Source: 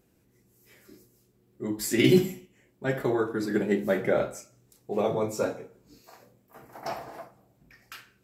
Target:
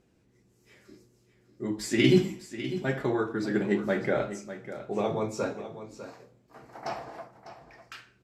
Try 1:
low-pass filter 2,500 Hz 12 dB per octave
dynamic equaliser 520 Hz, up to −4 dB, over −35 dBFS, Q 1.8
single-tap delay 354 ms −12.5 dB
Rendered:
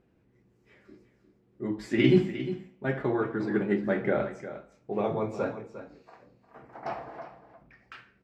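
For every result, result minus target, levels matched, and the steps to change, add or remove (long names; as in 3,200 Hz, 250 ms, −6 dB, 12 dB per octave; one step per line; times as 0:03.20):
8,000 Hz band −15.5 dB; echo 246 ms early
change: low-pass filter 6,500 Hz 12 dB per octave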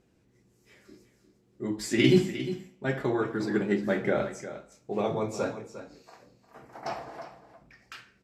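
echo 246 ms early
change: single-tap delay 600 ms −12.5 dB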